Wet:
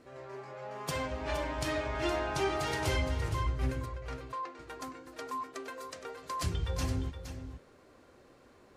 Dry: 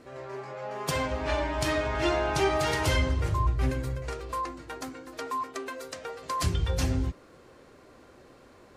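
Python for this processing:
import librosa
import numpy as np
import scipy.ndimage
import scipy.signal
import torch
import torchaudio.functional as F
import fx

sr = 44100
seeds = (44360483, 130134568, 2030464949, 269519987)

p1 = fx.bandpass_edges(x, sr, low_hz=380.0, high_hz=fx.line((3.85, 5700.0), (4.58, 4200.0)), at=(3.85, 4.58), fade=0.02)
p2 = p1 + fx.echo_single(p1, sr, ms=467, db=-10.0, dry=0)
y = p2 * librosa.db_to_amplitude(-6.0)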